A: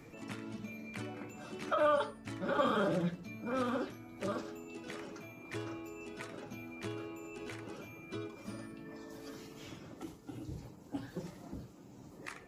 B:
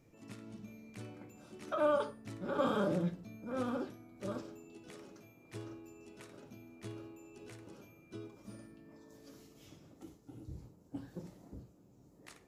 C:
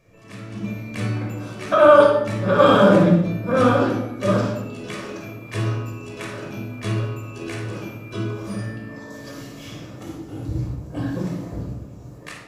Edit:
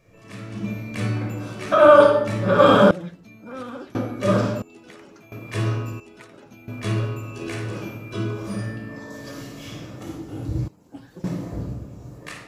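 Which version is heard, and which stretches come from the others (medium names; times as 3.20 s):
C
2.91–3.95 s: from A
4.62–5.32 s: from A
6.00–6.68 s: from A
10.68–11.24 s: from A
not used: B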